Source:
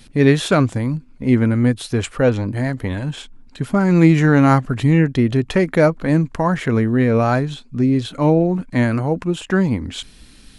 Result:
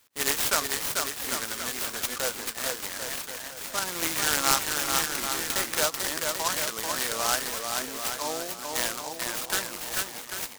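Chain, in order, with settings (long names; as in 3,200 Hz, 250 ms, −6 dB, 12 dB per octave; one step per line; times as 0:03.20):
noise gate −35 dBFS, range −11 dB
high-pass filter 1,400 Hz 12 dB per octave
on a send: bouncing-ball delay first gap 440 ms, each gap 0.8×, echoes 5
on the sum: short delay modulated by noise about 5,500 Hz, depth 0.12 ms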